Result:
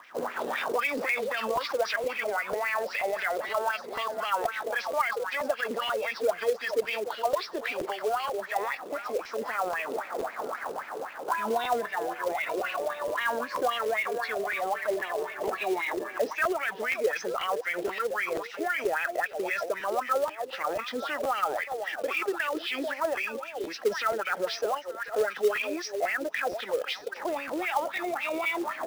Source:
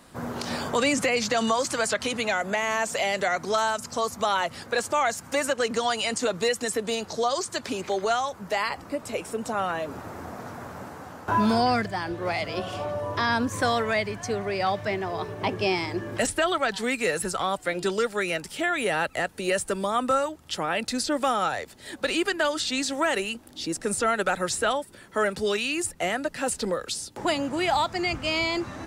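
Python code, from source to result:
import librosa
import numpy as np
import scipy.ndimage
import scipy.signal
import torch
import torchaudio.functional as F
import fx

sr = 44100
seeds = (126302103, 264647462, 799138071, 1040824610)

p1 = fx.freq_compress(x, sr, knee_hz=2200.0, ratio=1.5)
p2 = scipy.signal.sosfilt(scipy.signal.butter(2, 200.0, 'highpass', fs=sr, output='sos'), p1)
p3 = p2 + fx.echo_stepped(p2, sr, ms=437, hz=520.0, octaves=1.4, feedback_pct=70, wet_db=-10, dry=0)
p4 = fx.wah_lfo(p3, sr, hz=3.8, low_hz=410.0, high_hz=2400.0, q=5.0)
p5 = fx.over_compress(p4, sr, threshold_db=-44.0, ratio=-1.0)
p6 = p4 + (p5 * 10.0 ** (0.0 / 20.0))
p7 = fx.quant_float(p6, sr, bits=2)
p8 = fx.buffer_crackle(p7, sr, first_s=0.59, period_s=0.48, block=512, kind='repeat')
y = p8 * 10.0 ** (4.0 / 20.0)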